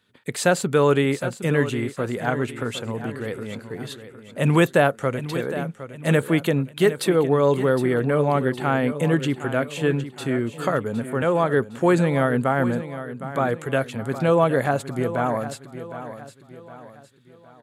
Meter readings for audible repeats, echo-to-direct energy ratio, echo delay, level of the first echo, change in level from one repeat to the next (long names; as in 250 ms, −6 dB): 3, −11.5 dB, 762 ms, −12.5 dB, −7.5 dB